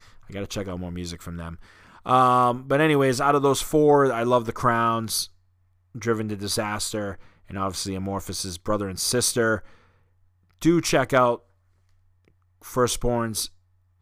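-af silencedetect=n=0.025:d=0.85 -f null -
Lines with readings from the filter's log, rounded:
silence_start: 9.58
silence_end: 10.62 | silence_duration: 1.04
silence_start: 11.35
silence_end: 12.66 | silence_duration: 1.31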